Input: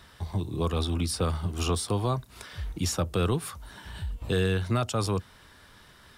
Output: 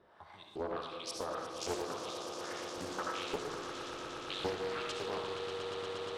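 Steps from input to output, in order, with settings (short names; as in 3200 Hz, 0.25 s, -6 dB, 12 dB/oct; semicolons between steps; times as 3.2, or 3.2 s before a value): in parallel at -1 dB: compressor, threshold -35 dBFS, peak gain reduction 12.5 dB; on the sum: LFO band-pass saw up 1.8 Hz 400–6300 Hz; swelling echo 0.118 s, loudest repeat 8, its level -11 dB; digital reverb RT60 0.87 s, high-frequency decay 0.6×, pre-delay 30 ms, DRR 1 dB; Doppler distortion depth 0.62 ms; gain -5 dB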